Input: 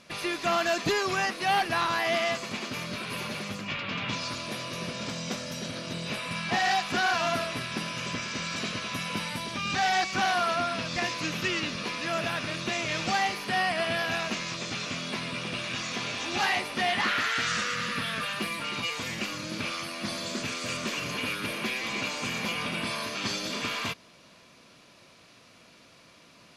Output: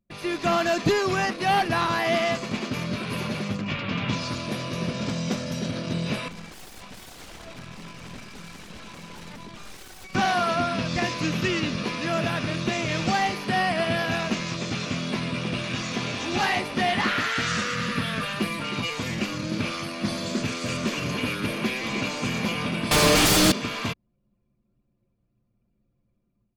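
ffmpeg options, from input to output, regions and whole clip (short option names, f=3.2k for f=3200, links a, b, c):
-filter_complex "[0:a]asettb=1/sr,asplit=3[a][b][c];[a]atrim=end=6.284[d];[b]atrim=start=6.28:end=10.15,asetpts=PTS-STARTPTS,afade=t=in:d=0.004:c=qsin,afade=t=out:st=3.866:d=0.004:c=qsin,aeval=exprs='0.0211*(abs(mod(val(0)/0.0211+3,4)-2)-1)':c=same,aeval=exprs='(tanh(22.4*val(0)+0.6)-tanh(0.6))/22.4':c=same[e];[c]atrim=start=10.146[f];[d][e]acrossfade=d=0.004:c1=hsin:c2=qsin[g];[g][f]acrossfade=d=0.004:c1=qsin:c2=hsin,asettb=1/sr,asplit=3[h][i][j];[h]atrim=end=22.914[k];[i]atrim=start=22.91:end=23.52,asetpts=PTS-STARTPTS,afade=t=in:d=0.004:c=qsin,afade=t=out:st=0.606:d=0.004:c=qsin,acrusher=bits=7:mode=log:mix=0:aa=0.000001,aecho=1:1:6.6:0.87,atrim=end_sample=26901,aeval=exprs='0.158*sin(PI/2*5.01*val(0)/0.158)':c=same[l];[j]atrim=start=23.516[m];[k][l]acrossfade=d=0.004:c1=hsin:c2=qsin[n];[n][m]acrossfade=d=0.004:c1=qsin:c2=hsin,anlmdn=0.631,lowshelf=f=490:g=9.5,dynaudnorm=f=110:g=5:m=8.5dB,volume=-7.5dB"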